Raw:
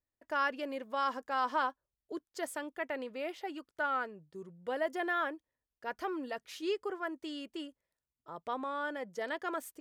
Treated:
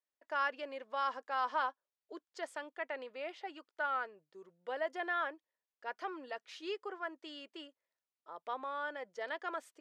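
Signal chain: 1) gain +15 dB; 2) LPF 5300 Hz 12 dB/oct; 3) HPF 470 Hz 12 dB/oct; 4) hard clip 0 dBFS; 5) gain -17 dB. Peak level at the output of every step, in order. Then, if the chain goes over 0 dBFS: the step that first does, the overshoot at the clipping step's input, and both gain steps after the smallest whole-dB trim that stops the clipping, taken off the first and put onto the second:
-5.5, -5.5, -5.5, -5.5, -22.5 dBFS; no overload

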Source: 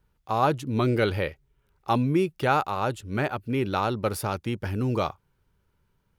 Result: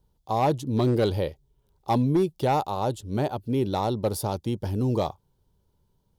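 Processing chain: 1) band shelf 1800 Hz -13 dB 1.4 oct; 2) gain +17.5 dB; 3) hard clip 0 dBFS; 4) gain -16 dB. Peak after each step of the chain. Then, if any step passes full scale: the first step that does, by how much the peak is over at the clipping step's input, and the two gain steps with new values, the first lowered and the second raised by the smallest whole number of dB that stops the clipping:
-11.5, +6.0, 0.0, -16.0 dBFS; step 2, 6.0 dB; step 2 +11.5 dB, step 4 -10 dB

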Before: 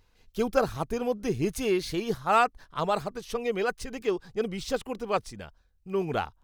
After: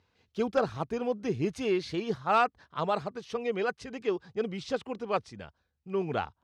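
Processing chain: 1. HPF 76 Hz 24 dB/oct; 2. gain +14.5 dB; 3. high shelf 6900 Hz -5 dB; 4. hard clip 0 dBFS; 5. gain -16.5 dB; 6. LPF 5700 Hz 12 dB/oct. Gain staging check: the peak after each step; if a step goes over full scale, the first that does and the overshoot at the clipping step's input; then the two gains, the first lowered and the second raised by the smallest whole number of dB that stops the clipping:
-9.5, +5.0, +5.0, 0.0, -16.5, -16.0 dBFS; step 2, 5.0 dB; step 2 +9.5 dB, step 5 -11.5 dB

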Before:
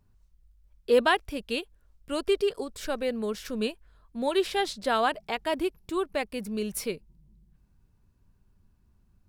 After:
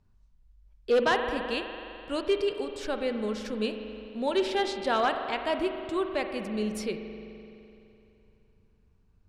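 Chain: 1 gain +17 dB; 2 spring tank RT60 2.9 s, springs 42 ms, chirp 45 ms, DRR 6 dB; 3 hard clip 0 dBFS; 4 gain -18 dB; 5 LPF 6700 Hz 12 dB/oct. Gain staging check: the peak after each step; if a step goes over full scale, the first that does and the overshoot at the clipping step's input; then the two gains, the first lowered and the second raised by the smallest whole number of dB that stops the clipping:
+5.5, +8.0, 0.0, -18.0, -17.5 dBFS; step 1, 8.0 dB; step 1 +9 dB, step 4 -10 dB

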